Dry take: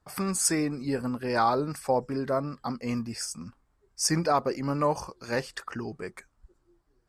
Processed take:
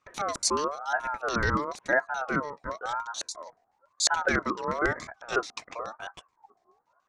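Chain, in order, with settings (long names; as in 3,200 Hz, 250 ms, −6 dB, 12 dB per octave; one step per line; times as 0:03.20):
auto-filter low-pass square 7 Hz 530–5,700 Hz
ring modulator whose carrier an LFO sweeps 940 Hz, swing 25%, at 0.98 Hz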